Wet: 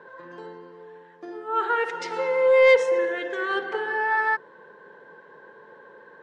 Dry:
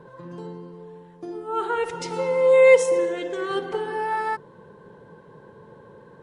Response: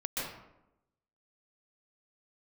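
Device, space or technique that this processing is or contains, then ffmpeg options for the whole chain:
intercom: -filter_complex "[0:a]highpass=390,lowpass=5000,equalizer=frequency=1700:width_type=o:width=0.52:gain=10.5,asoftclip=type=tanh:threshold=-8.5dB,asettb=1/sr,asplit=3[link_01][link_02][link_03];[link_01]atrim=end=2.714[link_04];[link_02]atrim=start=2.71:end=3.3,asetpts=PTS-STARTPTS,afade=type=in:duration=0.004:curve=qsin,afade=type=out:start_time=0.586:duration=0.004:curve=qsin,highshelf=frequency=9100:gain=-11.5[link_05];[link_03]atrim=start=3.296[link_06];[link_04][link_05]acrossfade=duration=0.004:curve1=hsin:curve2=qsin[link_07];[link_07][link_06]acrossfade=duration=0.004:curve1=qsin:curve2=hsin"

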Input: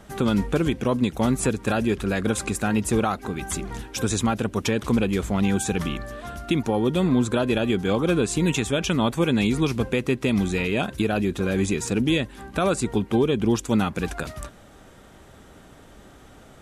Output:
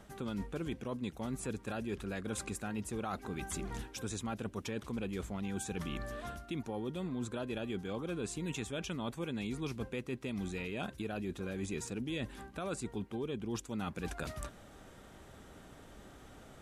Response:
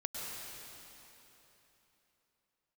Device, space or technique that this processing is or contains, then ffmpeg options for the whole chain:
compression on the reversed sound: -af "areverse,acompressor=threshold=-30dB:ratio=6,areverse,volume=-6dB"

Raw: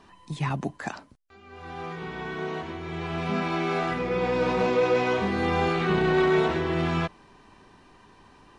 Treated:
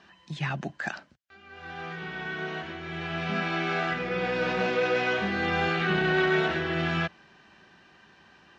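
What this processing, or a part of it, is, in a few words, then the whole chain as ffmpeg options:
car door speaker: -af "highpass=100,equalizer=frequency=110:width_type=q:width=4:gain=-9,equalizer=frequency=270:width_type=q:width=4:gain=-9,equalizer=frequency=440:width_type=q:width=4:gain=-7,equalizer=frequency=1000:width_type=q:width=4:gain=-9,equalizer=frequency=1600:width_type=q:width=4:gain=7,equalizer=frequency=2900:width_type=q:width=4:gain=4,lowpass=frequency=6500:width=0.5412,lowpass=frequency=6500:width=1.3066"

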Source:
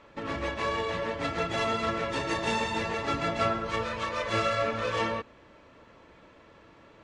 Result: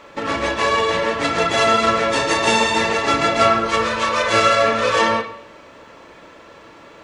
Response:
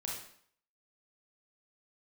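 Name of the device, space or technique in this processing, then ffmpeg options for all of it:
filtered reverb send: -filter_complex "[0:a]bass=frequency=250:gain=-5,treble=frequency=4000:gain=10,asplit=2[link_01][link_02];[link_02]highpass=frequency=190:poles=1,lowpass=3500[link_03];[1:a]atrim=start_sample=2205[link_04];[link_03][link_04]afir=irnorm=-1:irlink=0,volume=-2dB[link_05];[link_01][link_05]amix=inputs=2:normalize=0,volume=8.5dB"

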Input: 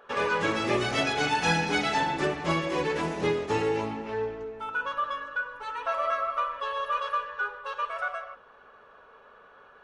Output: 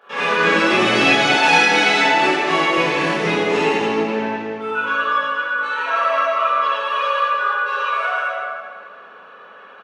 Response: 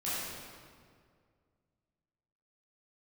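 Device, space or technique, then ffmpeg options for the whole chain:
PA in a hall: -filter_complex "[0:a]highpass=frequency=160:width=0.5412,highpass=frequency=160:width=1.3066,equalizer=frequency=2600:width_type=o:width=1.7:gain=6,aecho=1:1:83:0.376[link_01];[1:a]atrim=start_sample=2205[link_02];[link_01][link_02]afir=irnorm=-1:irlink=0,asettb=1/sr,asplit=3[link_03][link_04][link_05];[link_03]atrim=end=1.374[link_06];[link_04]atrim=start=1.37:end=2.78,asetpts=PTS-STARTPTS,afade=type=in:duration=0.004:curve=qsin,afade=type=out:start_time=1.406:duration=0.004:curve=qsin,highpass=260[link_07];[link_05]atrim=start=2.776[link_08];[link_06][link_07]acrossfade=duration=0.004:curve1=hsin:curve2=qsin[link_09];[link_09][link_08]acrossfade=duration=0.004:curve1=qsin:curve2=hsin,volume=3dB"

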